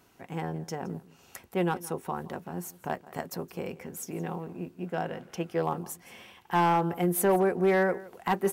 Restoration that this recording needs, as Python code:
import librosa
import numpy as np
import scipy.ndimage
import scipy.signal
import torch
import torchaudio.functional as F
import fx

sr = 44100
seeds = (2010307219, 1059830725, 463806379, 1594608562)

y = fx.fix_declip(x, sr, threshold_db=-17.5)
y = fx.fix_echo_inverse(y, sr, delay_ms=168, level_db=-20.0)